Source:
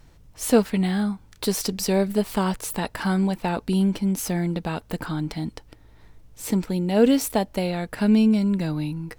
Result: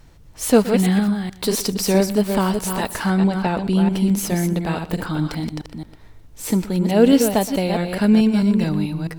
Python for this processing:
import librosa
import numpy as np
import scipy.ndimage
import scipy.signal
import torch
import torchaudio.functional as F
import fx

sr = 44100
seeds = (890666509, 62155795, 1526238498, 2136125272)

y = fx.reverse_delay(x, sr, ms=216, wet_db=-6.0)
y = fx.high_shelf(y, sr, hz=8100.0, db=-11.0, at=(3.06, 3.91))
y = y + 10.0 ** (-18.0 / 20.0) * np.pad(y, (int(122 * sr / 1000.0), 0))[:len(y)]
y = y * 10.0 ** (3.5 / 20.0)